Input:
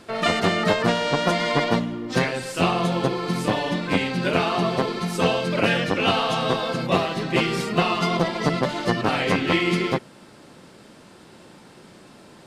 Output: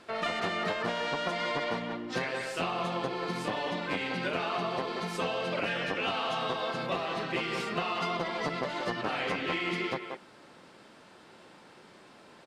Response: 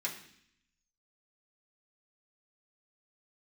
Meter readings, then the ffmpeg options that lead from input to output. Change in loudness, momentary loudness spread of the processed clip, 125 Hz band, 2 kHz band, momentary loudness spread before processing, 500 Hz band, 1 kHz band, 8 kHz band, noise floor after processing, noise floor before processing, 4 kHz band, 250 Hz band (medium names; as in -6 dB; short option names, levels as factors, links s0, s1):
-9.5 dB, 3 LU, -15.0 dB, -7.5 dB, 4 LU, -10.0 dB, -8.0 dB, -12.0 dB, -55 dBFS, -48 dBFS, -9.0 dB, -13.0 dB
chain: -filter_complex "[0:a]asplit=2[s0][s1];[s1]adelay=180,highpass=300,lowpass=3400,asoftclip=type=hard:threshold=0.178,volume=0.398[s2];[s0][s2]amix=inputs=2:normalize=0,asplit=2[s3][s4];[s4]highpass=f=720:p=1,volume=2.82,asoftclip=type=tanh:threshold=0.501[s5];[s3][s5]amix=inputs=2:normalize=0,lowpass=f=3300:p=1,volume=0.501,acompressor=threshold=0.1:ratio=6,volume=0.398"